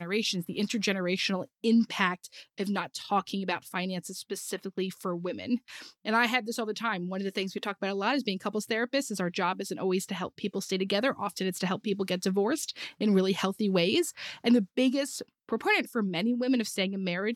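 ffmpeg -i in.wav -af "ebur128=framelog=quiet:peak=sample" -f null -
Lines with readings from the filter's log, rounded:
Integrated loudness:
  I:         -29.7 LUFS
  Threshold: -39.8 LUFS
Loudness range:
  LRA:         4.7 LU
  Threshold: -49.9 LUFS
  LRA low:   -32.4 LUFS
  LRA high:  -27.7 LUFS
Sample peak:
  Peak:      -11.8 dBFS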